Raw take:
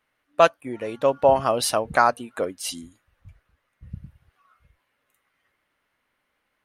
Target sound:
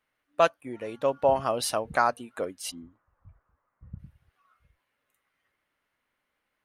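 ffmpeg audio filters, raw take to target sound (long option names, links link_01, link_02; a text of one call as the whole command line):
ffmpeg -i in.wav -filter_complex "[0:a]asplit=3[link_01][link_02][link_03];[link_01]afade=type=out:start_time=2.7:duration=0.02[link_04];[link_02]lowpass=frequency=1100:width_type=q:width=2.3,afade=type=in:start_time=2.7:duration=0.02,afade=type=out:start_time=3.98:duration=0.02[link_05];[link_03]afade=type=in:start_time=3.98:duration=0.02[link_06];[link_04][link_05][link_06]amix=inputs=3:normalize=0,volume=-5.5dB" out.wav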